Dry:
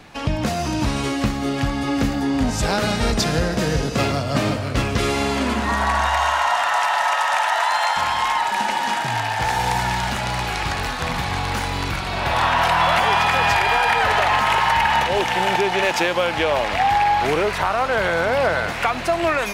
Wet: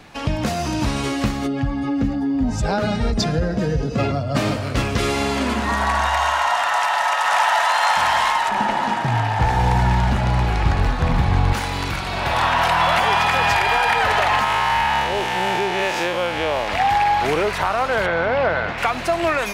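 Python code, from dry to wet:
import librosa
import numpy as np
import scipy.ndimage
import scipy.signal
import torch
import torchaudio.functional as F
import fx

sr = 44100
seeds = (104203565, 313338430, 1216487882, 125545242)

y = fx.spec_expand(x, sr, power=1.5, at=(1.46, 4.34), fade=0.02)
y = fx.echo_throw(y, sr, start_s=6.67, length_s=1.06, ms=570, feedback_pct=55, wet_db=-2.0)
y = fx.tilt_eq(y, sr, slope=-3.0, at=(8.49, 11.53))
y = fx.spec_blur(y, sr, span_ms=94.0, at=(14.44, 16.68))
y = fx.lowpass(y, sr, hz=3200.0, slope=12, at=(18.06, 18.78))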